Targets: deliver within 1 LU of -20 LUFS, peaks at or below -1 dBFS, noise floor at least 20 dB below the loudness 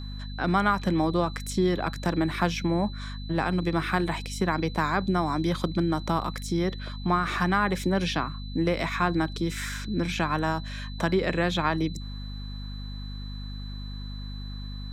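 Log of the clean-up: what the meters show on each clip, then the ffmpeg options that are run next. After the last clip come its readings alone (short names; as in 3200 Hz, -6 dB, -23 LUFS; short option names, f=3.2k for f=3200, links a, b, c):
hum 50 Hz; harmonics up to 250 Hz; hum level -34 dBFS; steady tone 4000 Hz; tone level -45 dBFS; loudness -27.0 LUFS; peak -8.0 dBFS; loudness target -20.0 LUFS
-> -af "bandreject=f=50:t=h:w=4,bandreject=f=100:t=h:w=4,bandreject=f=150:t=h:w=4,bandreject=f=200:t=h:w=4,bandreject=f=250:t=h:w=4"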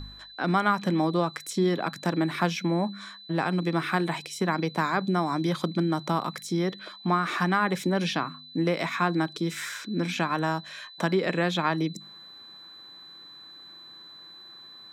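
hum none; steady tone 4000 Hz; tone level -45 dBFS
-> -af "bandreject=f=4k:w=30"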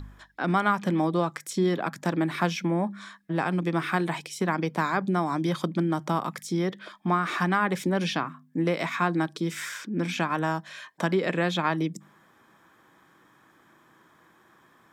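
steady tone none; loudness -27.5 LUFS; peak -9.0 dBFS; loudness target -20.0 LUFS
-> -af "volume=7.5dB"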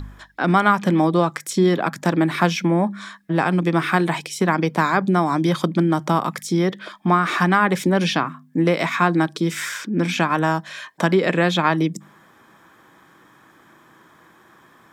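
loudness -20.0 LUFS; peak -1.5 dBFS; noise floor -53 dBFS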